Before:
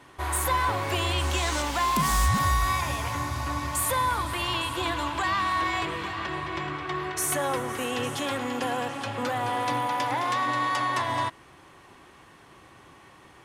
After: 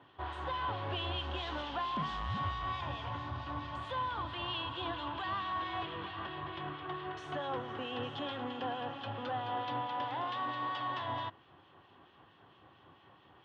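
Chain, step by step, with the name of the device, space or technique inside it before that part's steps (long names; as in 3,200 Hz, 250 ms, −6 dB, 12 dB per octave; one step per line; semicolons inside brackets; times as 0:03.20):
guitar amplifier with harmonic tremolo (two-band tremolo in antiphase 4.5 Hz, depth 50%, crossover 2,000 Hz; soft clipping −23.5 dBFS, distortion −15 dB; loudspeaker in its box 81–3,500 Hz, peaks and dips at 100 Hz +5 dB, 760 Hz +3 dB, 2,200 Hz −9 dB, 3,200 Hz +7 dB)
level −6.5 dB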